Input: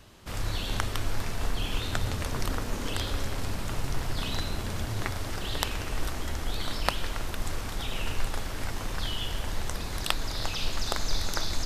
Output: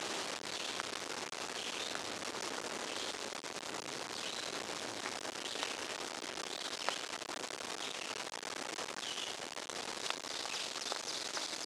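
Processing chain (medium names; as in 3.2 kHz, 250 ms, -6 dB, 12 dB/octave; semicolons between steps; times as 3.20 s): one-bit delta coder 64 kbps, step -22 dBFS; Chebyshev band-pass 370–6700 Hz, order 2; trim -8.5 dB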